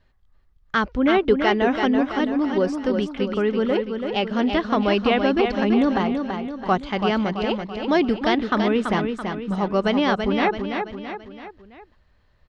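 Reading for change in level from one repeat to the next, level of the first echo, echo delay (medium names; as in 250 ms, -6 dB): -6.0 dB, -6.0 dB, 333 ms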